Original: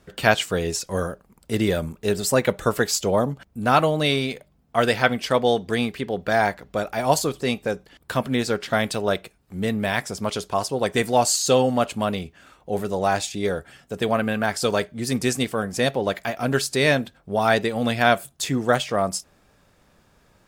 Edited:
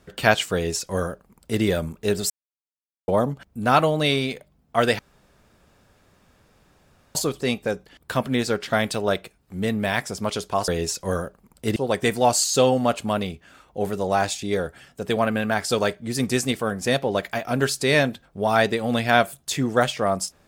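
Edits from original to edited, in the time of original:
0:00.54–0:01.62: duplicate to 0:10.68
0:02.30–0:03.08: silence
0:04.99–0:07.15: fill with room tone

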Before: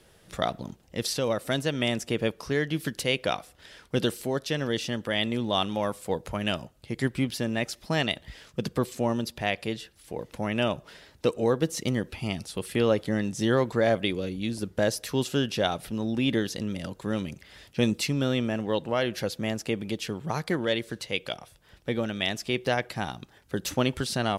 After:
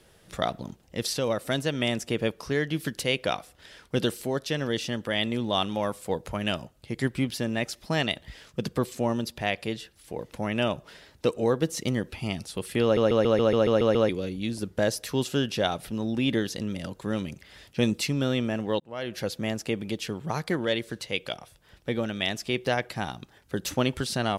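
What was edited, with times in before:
0:12.83: stutter in place 0.14 s, 9 plays
0:18.80–0:19.28: fade in

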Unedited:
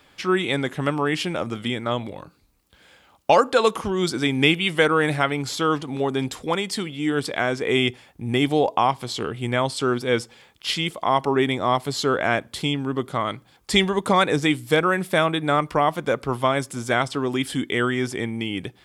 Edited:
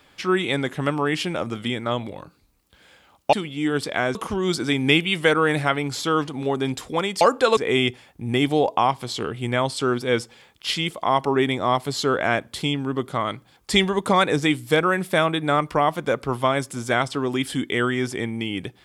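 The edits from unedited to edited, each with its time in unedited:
0:03.33–0:03.69: swap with 0:06.75–0:07.57

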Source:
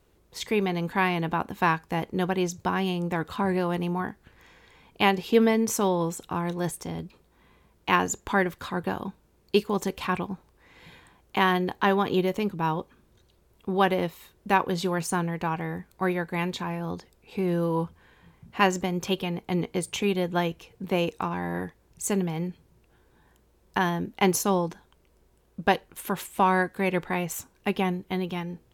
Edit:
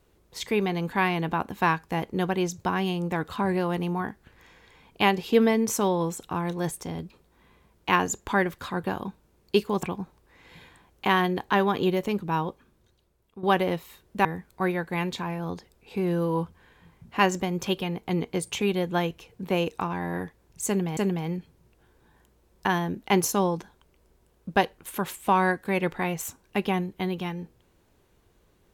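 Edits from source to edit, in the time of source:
0:09.83–0:10.14: remove
0:12.66–0:13.74: fade out, to −13 dB
0:14.56–0:15.66: remove
0:22.08–0:22.38: repeat, 2 plays

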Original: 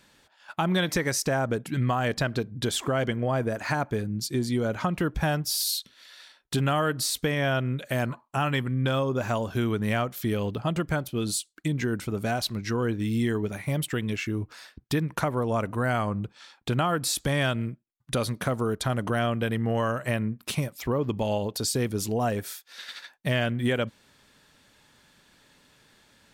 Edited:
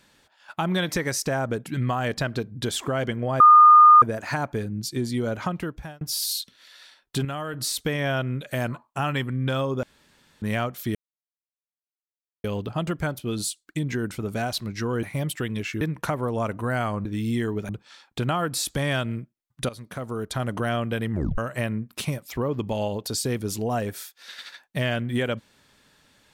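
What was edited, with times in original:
0:03.40: insert tone 1,220 Hz −8 dBFS 0.62 s
0:04.81–0:05.39: fade out
0:06.63–0:06.92: clip gain −7 dB
0:09.21–0:09.80: fill with room tone
0:10.33: splice in silence 1.49 s
0:12.92–0:13.56: move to 0:16.19
0:14.34–0:14.95: remove
0:18.19–0:18.98: fade in, from −15.5 dB
0:19.62: tape stop 0.26 s

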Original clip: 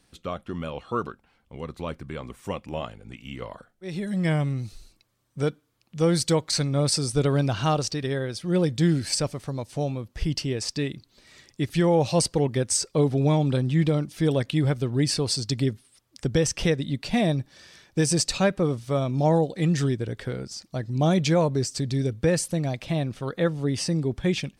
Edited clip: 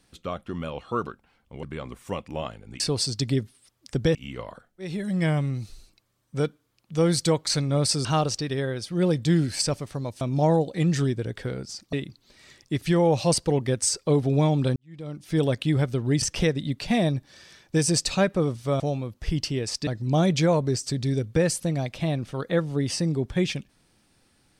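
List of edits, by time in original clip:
0:01.63–0:02.01: remove
0:07.08–0:07.58: remove
0:09.74–0:10.81: swap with 0:19.03–0:20.75
0:13.64–0:14.26: fade in quadratic
0:15.10–0:16.45: move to 0:03.18

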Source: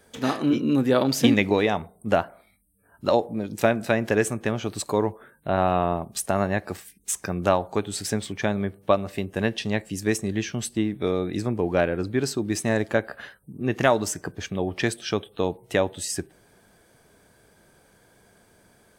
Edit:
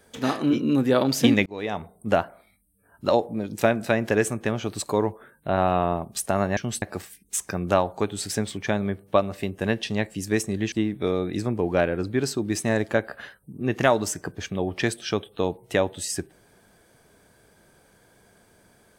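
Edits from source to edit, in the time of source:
0:01.46–0:01.92: fade in
0:10.47–0:10.72: move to 0:06.57

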